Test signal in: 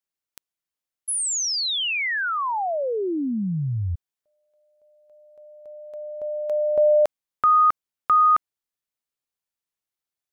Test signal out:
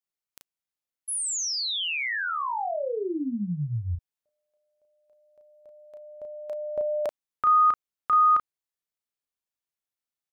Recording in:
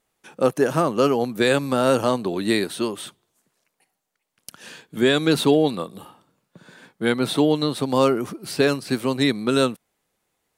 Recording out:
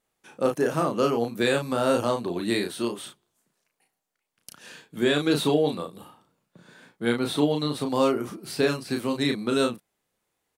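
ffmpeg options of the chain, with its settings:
-filter_complex "[0:a]asplit=2[a][b];[b]adelay=34,volume=-4.5dB[c];[a][c]amix=inputs=2:normalize=0,volume=-5.5dB"

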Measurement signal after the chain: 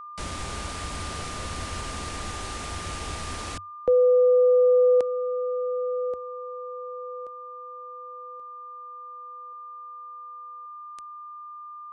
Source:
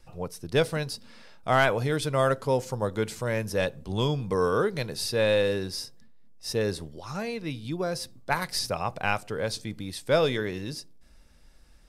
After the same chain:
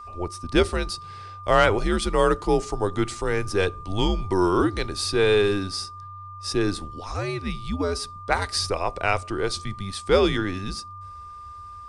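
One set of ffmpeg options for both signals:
-af "afreqshift=-95,aresample=22050,aresample=44100,aeval=exprs='val(0)+0.00794*sin(2*PI*1200*n/s)':c=same,volume=4dB"

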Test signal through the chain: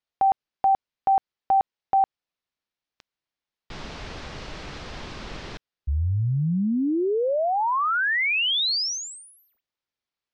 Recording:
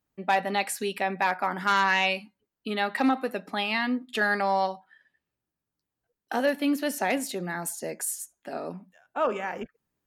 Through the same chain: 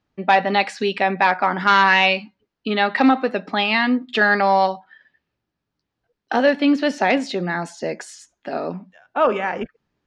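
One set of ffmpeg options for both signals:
-af "aeval=exprs='0.237*(cos(1*acos(clip(val(0)/0.237,-1,1)))-cos(1*PI/2))+0.00188*(cos(5*acos(clip(val(0)/0.237,-1,1)))-cos(5*PI/2))':c=same,lowpass=f=5.2k:w=0.5412,lowpass=f=5.2k:w=1.3066,volume=8.5dB"

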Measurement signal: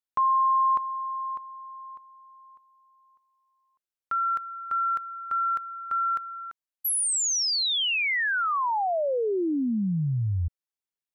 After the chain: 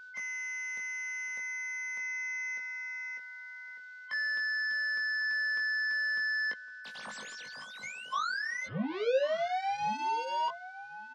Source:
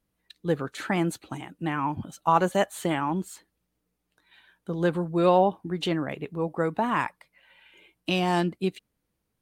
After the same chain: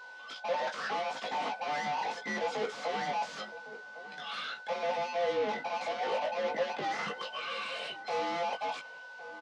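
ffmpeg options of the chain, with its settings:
-filter_complex "[0:a]afftfilt=real='real(if(between(b,1,1008),(2*floor((b-1)/48)+1)*48-b,b),0)':imag='imag(if(between(b,1,1008),(2*floor((b-1)/48)+1)*48-b,b),0)*if(between(b,1,1008),-1,1)':win_size=2048:overlap=0.75,equalizer=f=360:t=o:w=1:g=5.5,alimiter=limit=-17dB:level=0:latency=1:release=142,areverse,acompressor=threshold=-34dB:ratio=12:attack=1.6:release=194:knee=1:detection=peak,areverse,asplit=2[a][b];[b]highpass=f=720:p=1,volume=28dB,asoftclip=type=tanh:threshold=-26dB[c];[a][c]amix=inputs=2:normalize=0,lowpass=f=1k:p=1,volume=-6dB,acrossover=split=560|3000[d][e][f];[f]aeval=exprs='0.0106*sin(PI/2*6.31*val(0)/0.0106)':c=same[g];[d][e][g]amix=inputs=3:normalize=0,aeval=exprs='val(0)+0.0112*sin(2*PI*1500*n/s)':c=same,asoftclip=type=tanh:threshold=-31.5dB,highpass=f=150:w=0.5412,highpass=f=150:w=1.3066,equalizer=f=210:t=q:w=4:g=4,equalizer=f=350:t=q:w=4:g=-8,equalizer=f=510:t=q:w=4:g=9,equalizer=f=1.1k:t=q:w=4:g=5,lowpass=f=5.8k:w=0.5412,lowpass=f=5.8k:w=1.3066,asplit=2[h][i];[i]adelay=19,volume=-4dB[j];[h][j]amix=inputs=2:normalize=0,asplit=2[k][l];[l]adelay=1108,volume=-14dB,highshelf=f=4k:g=-24.9[m];[k][m]amix=inputs=2:normalize=0"

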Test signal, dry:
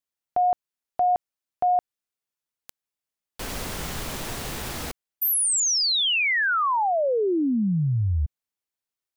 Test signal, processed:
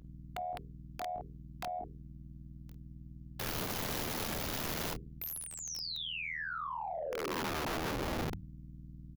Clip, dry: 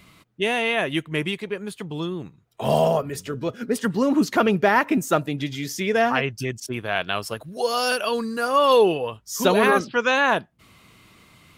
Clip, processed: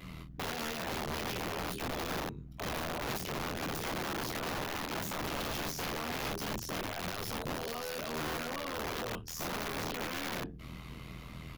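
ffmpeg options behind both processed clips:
-filter_complex "[0:a]apsyclip=15.5dB,tiltshelf=f=740:g=3.5,aeval=exprs='val(0)+0.0158*(sin(2*PI*60*n/s)+sin(2*PI*2*60*n/s)/2+sin(2*PI*3*60*n/s)/3+sin(2*PI*4*60*n/s)/4+sin(2*PI*5*60*n/s)/5)':c=same,bandreject=f=50:t=h:w=6,bandreject=f=100:t=h:w=6,bandreject=f=150:t=h:w=6,bandreject=f=200:t=h:w=6,bandreject=f=250:t=h:w=6,bandreject=f=300:t=h:w=6,bandreject=f=350:t=h:w=6,bandreject=f=400:t=h:w=6,bandreject=f=450:t=h:w=6,tremolo=f=80:d=0.919,acompressor=threshold=-22dB:ratio=6:attack=6.5:release=26:knee=6:detection=peak,asplit=2[a][b];[b]aecho=0:1:22|50:0.531|0.266[c];[a][c]amix=inputs=2:normalize=0,acrossover=split=250[d][e];[e]acompressor=threshold=-27dB:ratio=10:attack=1.5:release=41:knee=2.83:detection=peak[f];[d][f]amix=inputs=2:normalize=0,aeval=exprs='(mod(12.6*val(0)+1,2)-1)/12.6':c=same,equalizer=f=8.4k:t=o:w=0.44:g=-8,volume=-9dB"

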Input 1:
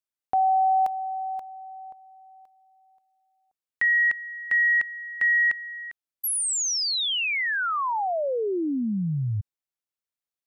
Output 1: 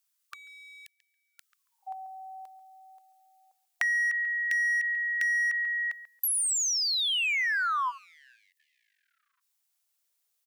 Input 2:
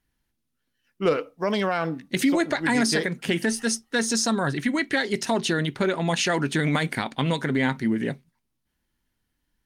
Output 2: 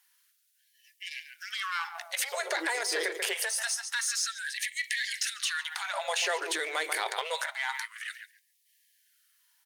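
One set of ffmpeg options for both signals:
-filter_complex "[0:a]bandreject=f=360:w=12,asplit=2[a][b];[b]adelay=139,lowpass=f=1.4k:p=1,volume=-13.5dB,asplit=2[c][d];[d]adelay=139,lowpass=f=1.4k:p=1,volume=0.22,asplit=2[e][f];[f]adelay=139,lowpass=f=1.4k:p=1,volume=0.22[g];[a][c][e][g]amix=inputs=4:normalize=0,acrossover=split=2700[h][i];[i]acompressor=threshold=-34dB:ratio=4:attack=1:release=60[j];[h][j]amix=inputs=2:normalize=0,highshelf=f=3.9k:g=11,asplit=2[k][l];[l]asoftclip=type=hard:threshold=-24dB,volume=-3.5dB[m];[k][m]amix=inputs=2:normalize=0,acompressor=threshold=-31dB:ratio=4:attack=7.9:release=51:knee=1:detection=peak,lowshelf=f=140:g=-12,afftfilt=real='re*gte(b*sr/1024,310*pow(1700/310,0.5+0.5*sin(2*PI*0.26*pts/sr)))':imag='im*gte(b*sr/1024,310*pow(1700/310,0.5+0.5*sin(2*PI*0.26*pts/sr)))':win_size=1024:overlap=0.75,volume=2dB"

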